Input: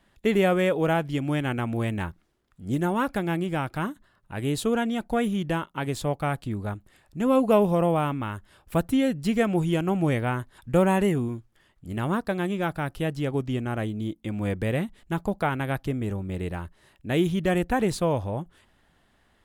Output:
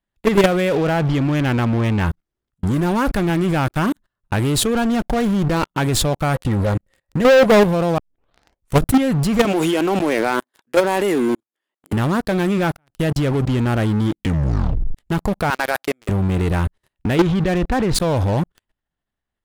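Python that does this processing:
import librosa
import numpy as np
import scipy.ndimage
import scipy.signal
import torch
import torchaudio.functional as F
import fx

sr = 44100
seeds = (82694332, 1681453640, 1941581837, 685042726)

y = fx.lowpass(x, sr, hz=4300.0, slope=12, at=(0.77, 2.06))
y = fx.low_shelf(y, sr, hz=73.0, db=8.5, at=(2.83, 3.3))
y = fx.running_max(y, sr, window=9, at=(4.75, 5.64))
y = fx.small_body(y, sr, hz=(530.0, 1900.0), ring_ms=75, db=16, at=(6.34, 7.45))
y = fx.highpass(y, sr, hz=280.0, slope=24, at=(9.45, 11.93))
y = fx.highpass(y, sr, hz=580.0, slope=12, at=(15.5, 16.09))
y = fx.lowpass(y, sr, hz=fx.line((17.15, 4800.0), (17.94, 2800.0)), slope=12, at=(17.15, 17.94), fade=0.02)
y = fx.edit(y, sr, fx.tape_start(start_s=7.98, length_s=0.91),
    fx.fade_in_span(start_s=12.77, length_s=0.49),
    fx.tape_stop(start_s=14.17, length_s=0.8), tone=tone)
y = fx.low_shelf(y, sr, hz=79.0, db=7.5)
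y = fx.level_steps(y, sr, step_db=19)
y = fx.leveller(y, sr, passes=5)
y = y * librosa.db_to_amplitude(2.5)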